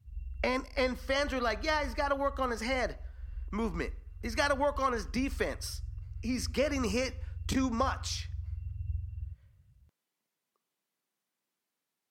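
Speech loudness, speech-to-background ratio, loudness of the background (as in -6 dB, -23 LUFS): -33.0 LUFS, 10.5 dB, -43.5 LUFS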